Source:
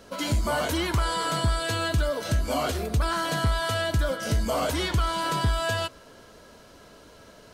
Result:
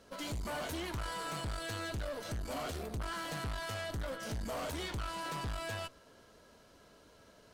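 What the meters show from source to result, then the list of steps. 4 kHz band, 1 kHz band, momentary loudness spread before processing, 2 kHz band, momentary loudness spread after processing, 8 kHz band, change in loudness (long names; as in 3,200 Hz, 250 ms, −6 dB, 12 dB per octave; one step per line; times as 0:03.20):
−12.5 dB, −13.0 dB, 2 LU, −12.0 dB, 2 LU, −11.5 dB, −13.0 dB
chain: tube saturation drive 28 dB, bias 0.65
level −7 dB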